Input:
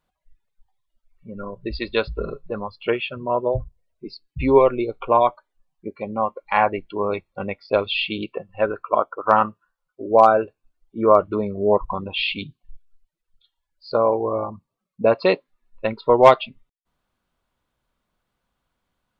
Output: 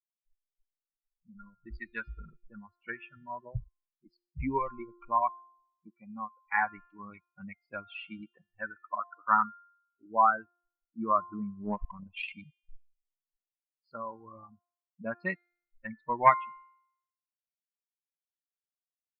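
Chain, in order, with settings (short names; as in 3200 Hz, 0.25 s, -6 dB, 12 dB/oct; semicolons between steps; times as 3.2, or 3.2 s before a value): per-bin expansion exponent 2; EQ curve 220 Hz 0 dB, 470 Hz -17 dB, 960 Hz +2 dB, 1900 Hz +7 dB, 3600 Hz -24 dB; 11.62–12.34 transient shaper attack +12 dB, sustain -4 dB; resonator 350 Hz, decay 0.7 s, mix 50%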